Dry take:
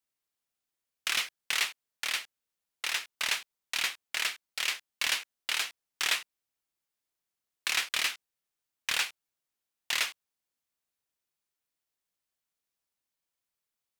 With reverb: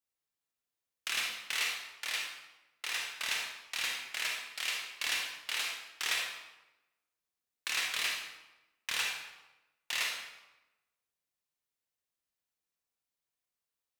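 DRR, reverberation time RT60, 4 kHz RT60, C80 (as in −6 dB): −0.5 dB, 1.0 s, 0.75 s, 5.0 dB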